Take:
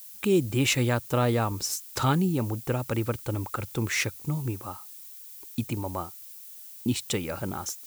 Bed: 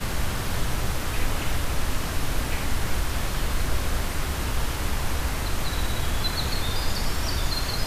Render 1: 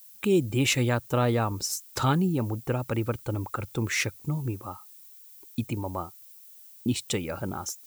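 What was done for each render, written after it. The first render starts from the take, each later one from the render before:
broadband denoise 7 dB, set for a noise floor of −45 dBFS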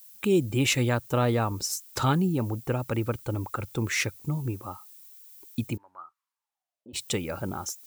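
0:05.76–0:06.93: resonant band-pass 1,700 Hz → 550 Hz, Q 7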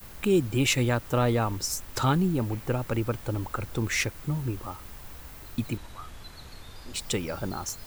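mix in bed −19 dB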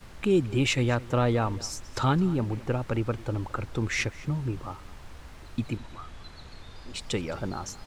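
high-frequency loss of the air 70 metres
single-tap delay 214 ms −19.5 dB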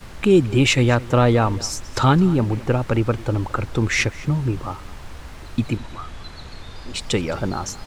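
level +8.5 dB

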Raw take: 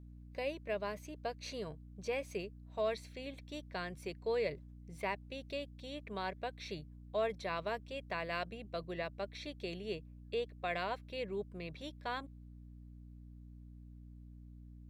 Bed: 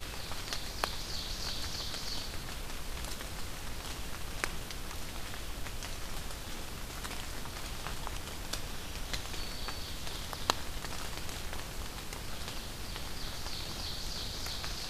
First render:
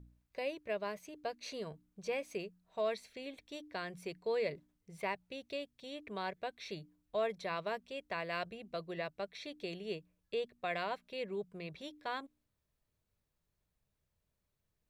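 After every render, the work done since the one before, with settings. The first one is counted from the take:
hum removal 60 Hz, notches 5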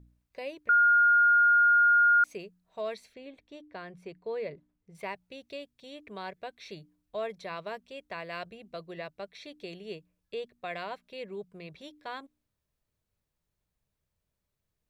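0:00.69–0:02.24: beep over 1,420 Hz −18 dBFS
0:03.14–0:04.95: low-pass filter 1,900 Hz 6 dB per octave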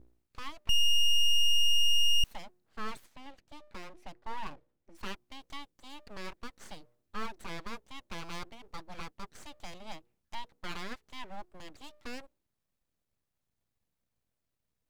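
full-wave rectification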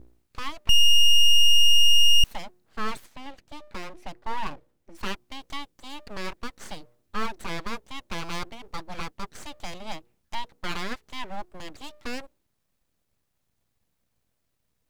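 level +8.5 dB

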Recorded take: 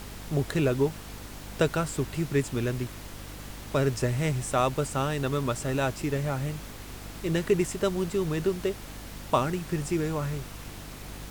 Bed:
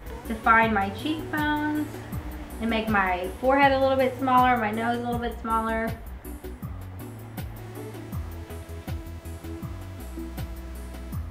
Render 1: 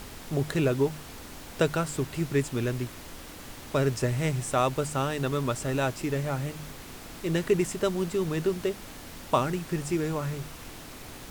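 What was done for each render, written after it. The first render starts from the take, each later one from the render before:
hum removal 50 Hz, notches 4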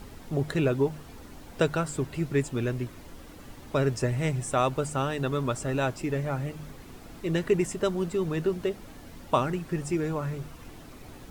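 broadband denoise 9 dB, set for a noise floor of −44 dBFS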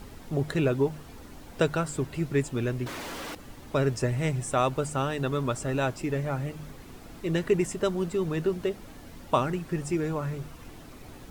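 0:02.86–0:03.35: mid-hump overdrive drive 33 dB, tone 4,400 Hz, clips at −29 dBFS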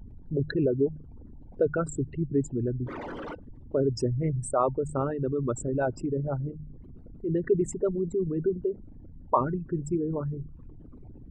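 spectral envelope exaggerated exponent 3
hollow resonant body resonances 900/1,500/3,100 Hz, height 8 dB, ringing for 85 ms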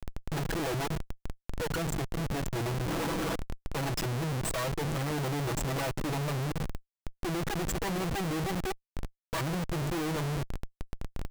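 lower of the sound and its delayed copy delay 6.1 ms
comparator with hysteresis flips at −41 dBFS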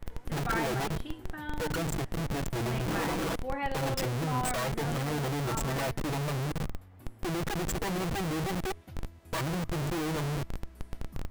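mix in bed −15 dB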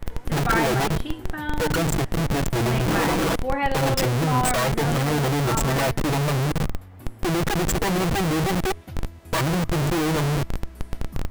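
level +9.5 dB

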